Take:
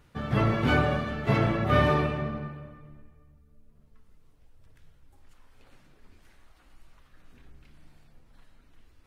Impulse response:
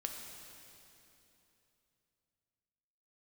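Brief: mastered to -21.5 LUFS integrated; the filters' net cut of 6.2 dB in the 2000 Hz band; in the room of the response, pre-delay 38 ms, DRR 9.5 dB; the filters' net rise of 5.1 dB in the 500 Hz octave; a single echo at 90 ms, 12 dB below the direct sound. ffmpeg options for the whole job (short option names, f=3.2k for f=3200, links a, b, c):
-filter_complex "[0:a]equalizer=f=500:t=o:g=7,equalizer=f=2k:t=o:g=-9,aecho=1:1:90:0.251,asplit=2[a][b];[1:a]atrim=start_sample=2205,adelay=38[c];[b][c]afir=irnorm=-1:irlink=0,volume=-9dB[d];[a][d]amix=inputs=2:normalize=0,volume=3dB"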